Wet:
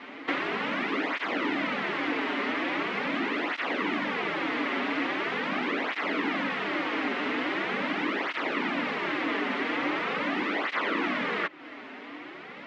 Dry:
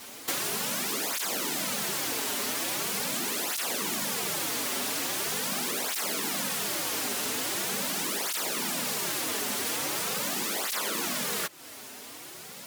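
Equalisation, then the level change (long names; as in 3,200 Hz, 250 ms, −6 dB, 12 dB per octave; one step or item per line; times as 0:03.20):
loudspeaker in its box 200–2,800 Hz, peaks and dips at 290 Hz +10 dB, 1,200 Hz +3 dB, 2,000 Hz +6 dB
+3.5 dB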